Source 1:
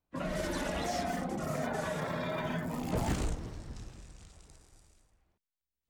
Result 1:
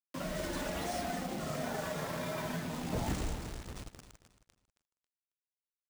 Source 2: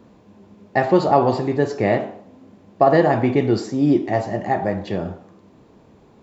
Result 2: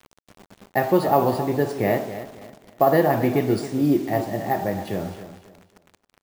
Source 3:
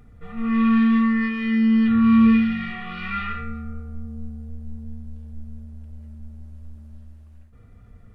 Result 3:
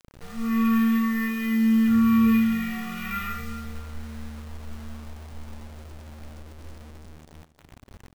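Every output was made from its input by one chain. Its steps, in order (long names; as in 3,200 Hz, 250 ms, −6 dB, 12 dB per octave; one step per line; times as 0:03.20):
bad sample-rate conversion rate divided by 3×, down none, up hold
bit reduction 7 bits
on a send: repeating echo 272 ms, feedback 30%, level −13 dB
on the sum: level −3 dB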